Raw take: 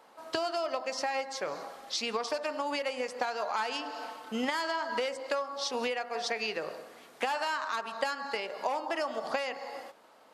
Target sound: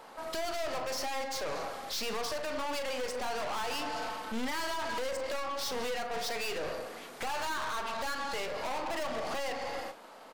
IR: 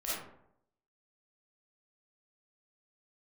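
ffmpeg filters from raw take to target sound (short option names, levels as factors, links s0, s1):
-filter_complex "[0:a]aeval=exprs='(tanh(141*val(0)+0.45)-tanh(0.45))/141':c=same,asplit=2[s0][s1];[s1]adelay=40,volume=0.266[s2];[s0][s2]amix=inputs=2:normalize=0,volume=2.82"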